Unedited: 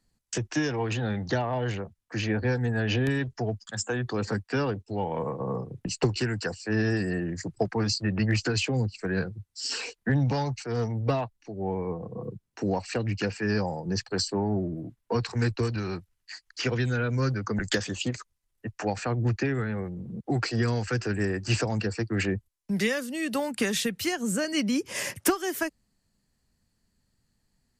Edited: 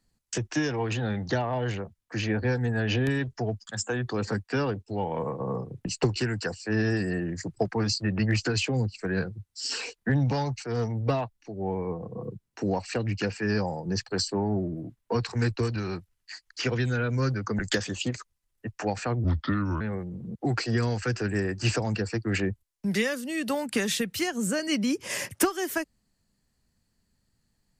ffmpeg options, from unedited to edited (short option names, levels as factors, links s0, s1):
-filter_complex "[0:a]asplit=3[s0][s1][s2];[s0]atrim=end=19.244[s3];[s1]atrim=start=19.24:end=19.66,asetpts=PTS-STARTPTS,asetrate=32634,aresample=44100[s4];[s2]atrim=start=19.656[s5];[s3][s4]acrossfade=d=0.004:c1=hsin:c2=hsin[s6];[s6][s5]acrossfade=d=0.004:c1=hsin:c2=hsin"